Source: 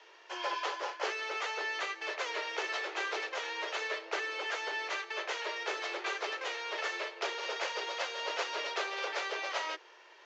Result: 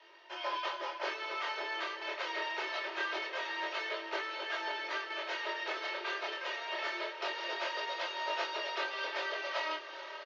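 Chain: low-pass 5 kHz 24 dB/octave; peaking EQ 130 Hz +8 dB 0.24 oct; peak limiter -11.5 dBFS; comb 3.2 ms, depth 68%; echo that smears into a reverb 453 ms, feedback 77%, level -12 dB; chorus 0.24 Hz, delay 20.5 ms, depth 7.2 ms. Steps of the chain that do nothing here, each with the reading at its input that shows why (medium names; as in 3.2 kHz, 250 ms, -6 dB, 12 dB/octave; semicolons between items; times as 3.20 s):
peaking EQ 130 Hz: input has nothing below 290 Hz; peak limiter -11.5 dBFS: peak at its input -20.5 dBFS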